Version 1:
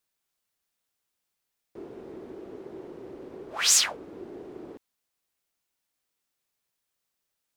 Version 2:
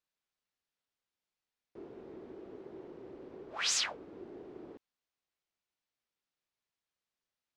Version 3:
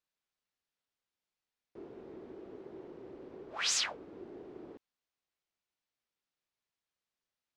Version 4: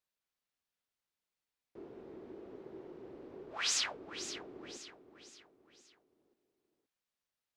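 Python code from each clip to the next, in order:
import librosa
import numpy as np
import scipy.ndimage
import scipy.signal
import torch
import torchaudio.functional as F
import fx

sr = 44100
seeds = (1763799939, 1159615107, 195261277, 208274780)

y1 = scipy.signal.sosfilt(scipy.signal.butter(2, 5200.0, 'lowpass', fs=sr, output='sos'), x)
y1 = y1 * librosa.db_to_amplitude(-6.5)
y2 = y1
y3 = fx.echo_feedback(y2, sr, ms=522, feedback_pct=43, wet_db=-11)
y3 = y3 * librosa.db_to_amplitude(-1.5)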